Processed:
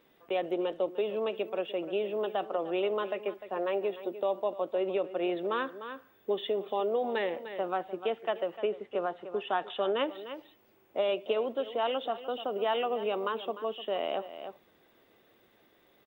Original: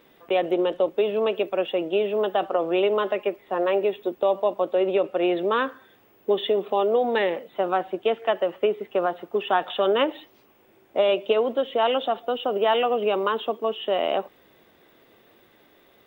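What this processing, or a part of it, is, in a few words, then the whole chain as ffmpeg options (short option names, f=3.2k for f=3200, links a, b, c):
ducked delay: -filter_complex "[0:a]asplit=3[a][b][c];[b]adelay=300,volume=-6dB[d];[c]apad=whole_len=721491[e];[d][e]sidechaincompress=threshold=-28dB:ratio=8:attack=16:release=560[f];[a][f]amix=inputs=2:normalize=0,asettb=1/sr,asplit=3[g][h][i];[g]atrim=end=8.574[j];[h]atrim=start=8.57:end=10.03,asetpts=PTS-STARTPTS,afade=t=in:d=0.004:c=qsin,afade=t=out:st=1.456:d=0.004:c=qsin,lowpass=8.9k[k];[i]atrim=start=10.026[l];[j][k]acrossfade=d=0.004:c1=hsin:c2=qsin[m];[m][l]acrossfade=d=0.004:c1=qsin:c2=hsin,volume=-8.5dB"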